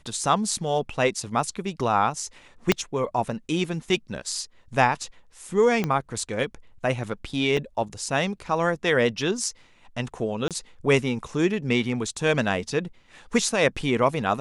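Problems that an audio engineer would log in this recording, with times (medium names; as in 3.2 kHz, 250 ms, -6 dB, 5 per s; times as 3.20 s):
2.72 s: pop -4 dBFS
5.84 s: pop -12 dBFS
7.57 s: dropout 3.7 ms
10.48–10.51 s: dropout 27 ms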